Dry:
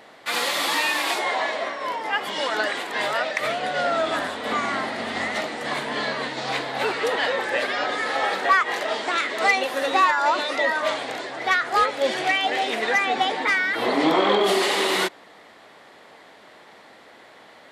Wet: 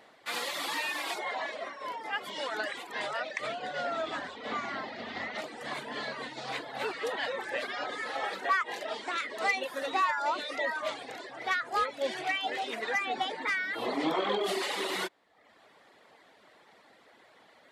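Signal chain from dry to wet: 2.99–5.37 LPF 10000 Hz -> 5300 Hz 24 dB/oct; reverb removal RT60 0.75 s; gain -9 dB

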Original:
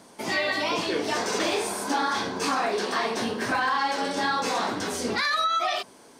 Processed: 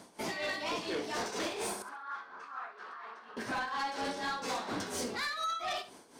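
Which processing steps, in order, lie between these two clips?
limiter -20 dBFS, peak gain reduction 6 dB; tremolo 4.2 Hz, depth 72%; soft clip -28.5 dBFS, distortion -13 dB; 1.82–3.37 band-pass 1300 Hz, Q 3.9; flutter echo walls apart 11.5 m, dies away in 0.31 s; gain -1.5 dB

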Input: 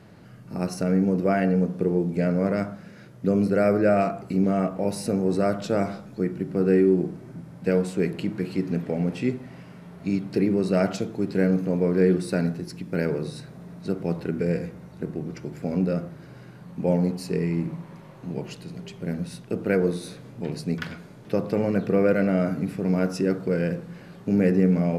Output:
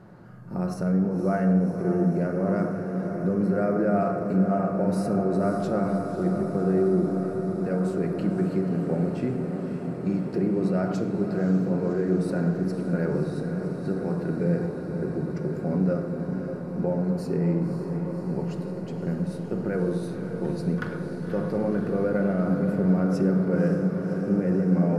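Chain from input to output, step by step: resonant high shelf 1800 Hz -9 dB, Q 1.5; limiter -18 dBFS, peak gain reduction 10 dB; on a send: diffused feedback echo 0.554 s, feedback 79%, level -8 dB; on the sum: shoebox room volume 2600 m³, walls mixed, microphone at 0.95 m

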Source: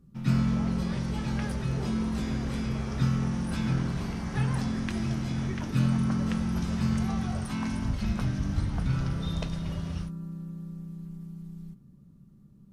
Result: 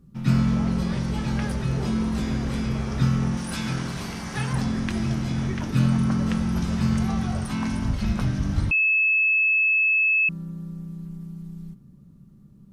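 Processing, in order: 3.37–4.53 tilt +2 dB/oct; 8.71–10.29 bleep 2600 Hz -21.5 dBFS; gain +4.5 dB

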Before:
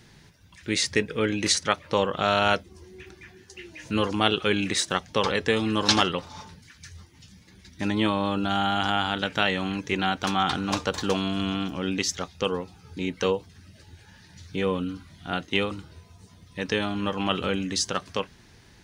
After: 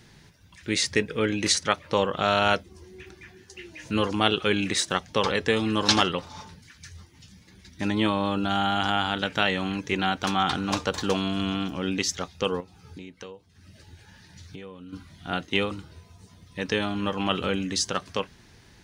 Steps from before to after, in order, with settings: 12.6–14.93 compressor 6:1, threshold -40 dBFS, peak gain reduction 19.5 dB

